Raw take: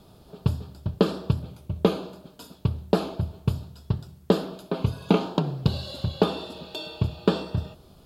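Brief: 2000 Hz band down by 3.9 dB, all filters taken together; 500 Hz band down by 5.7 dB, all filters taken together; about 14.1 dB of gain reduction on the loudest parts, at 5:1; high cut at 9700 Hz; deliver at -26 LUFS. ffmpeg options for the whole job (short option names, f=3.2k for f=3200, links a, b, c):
-af "lowpass=9.7k,equalizer=f=500:t=o:g=-7,equalizer=f=2k:t=o:g=-5.5,acompressor=threshold=-34dB:ratio=5,volume=15dB"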